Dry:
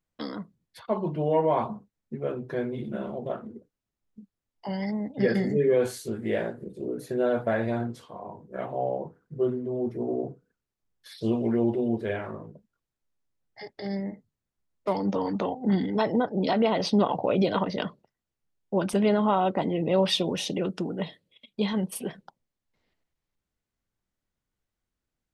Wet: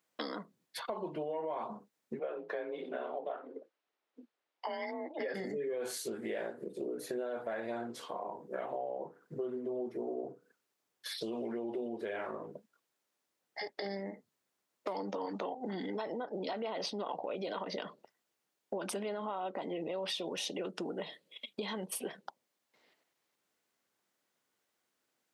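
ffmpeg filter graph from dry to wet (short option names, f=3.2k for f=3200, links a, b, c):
-filter_complex "[0:a]asettb=1/sr,asplit=3[a][b][c];[a]atrim=end=2.194[d];[b]atrim=start=2.19:end=5.34,asetpts=PTS-STARTPTS,afade=t=in:d=0.004:c=qsin,afade=t=out:st=3.146:d=0.004:c=qsin,acrossover=split=310 4300:gain=0.2 1 0.158[e][f][g];[e][f][g]amix=inputs=3:normalize=0,afreqshift=38[h];[c]atrim=start=5.336[i];[d][h]acrossfade=d=0.004:c1=hsin:c2=qsin[j];[j][i]acrossfade=d=0.004:c1=qsin:c2=hsin,alimiter=limit=-23.5dB:level=0:latency=1:release=107,highpass=360,acompressor=threshold=-47dB:ratio=3,volume=8dB"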